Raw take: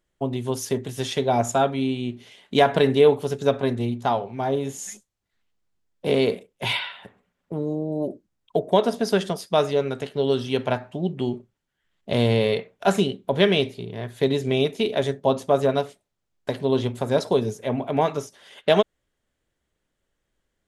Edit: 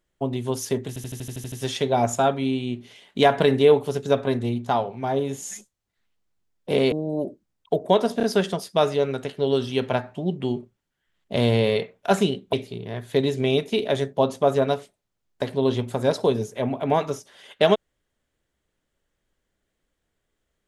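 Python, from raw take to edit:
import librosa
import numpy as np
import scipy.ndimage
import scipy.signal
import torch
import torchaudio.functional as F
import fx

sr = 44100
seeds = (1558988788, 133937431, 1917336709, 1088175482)

y = fx.edit(x, sr, fx.stutter(start_s=0.88, slice_s=0.08, count=9),
    fx.cut(start_s=6.28, length_s=1.47),
    fx.stutter(start_s=9.0, slice_s=0.03, count=3),
    fx.cut(start_s=13.3, length_s=0.3), tone=tone)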